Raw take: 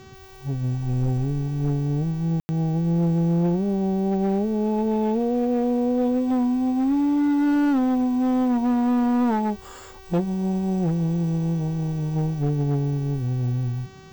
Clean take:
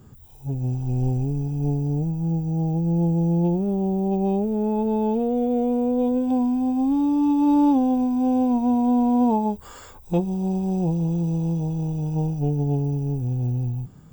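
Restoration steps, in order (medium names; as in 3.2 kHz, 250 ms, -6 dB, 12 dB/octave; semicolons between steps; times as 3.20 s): clip repair -16.5 dBFS; de-click; de-hum 381.9 Hz, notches 18; room tone fill 2.40–2.49 s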